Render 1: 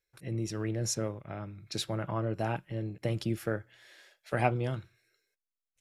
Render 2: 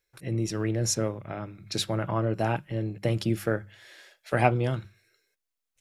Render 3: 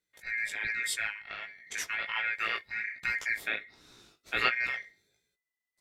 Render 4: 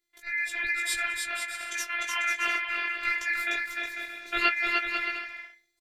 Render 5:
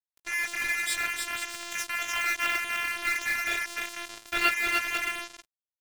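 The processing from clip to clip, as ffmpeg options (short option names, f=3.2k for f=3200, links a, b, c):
-af "bandreject=f=50:t=h:w=6,bandreject=f=100:t=h:w=6,bandreject=f=150:t=h:w=6,bandreject=f=200:t=h:w=6,volume=5.5dB"
-af "aeval=exprs='val(0)*sin(2*PI*2000*n/s)':c=same,flanger=delay=16:depth=3.9:speed=1.3"
-af "aecho=1:1:300|495|621.8|704.1|757.7:0.631|0.398|0.251|0.158|0.1,afftfilt=real='hypot(re,im)*cos(PI*b)':imag='0':win_size=512:overlap=0.75,volume=6dB"
-af "acrusher=bits=4:mix=0:aa=0.5"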